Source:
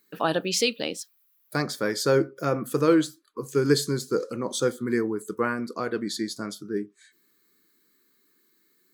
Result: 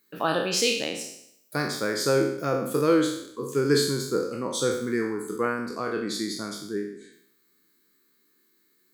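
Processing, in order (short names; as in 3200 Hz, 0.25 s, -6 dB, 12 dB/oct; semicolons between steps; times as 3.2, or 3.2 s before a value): spectral trails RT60 0.72 s; gain -2.5 dB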